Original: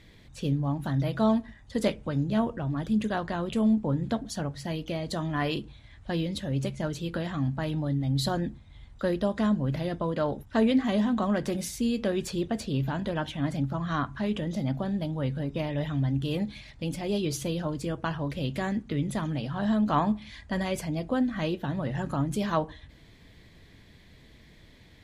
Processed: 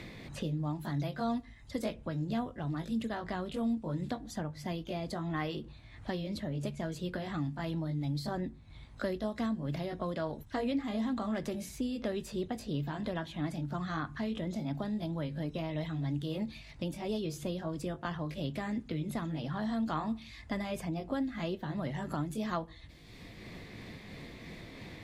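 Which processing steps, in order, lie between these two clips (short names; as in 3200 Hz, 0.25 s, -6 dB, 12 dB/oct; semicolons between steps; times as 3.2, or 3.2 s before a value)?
delay-line pitch shifter +1 st; three-band squash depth 70%; gain -6 dB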